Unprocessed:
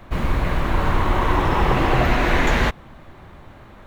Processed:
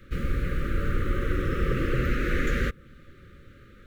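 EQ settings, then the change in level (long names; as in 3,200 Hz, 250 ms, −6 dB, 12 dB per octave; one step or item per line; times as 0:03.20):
Chebyshev band-stop filter 560–1,200 Hz, order 5
dynamic equaliser 4,100 Hz, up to −7 dB, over −41 dBFS, Q 0.73
−6.0 dB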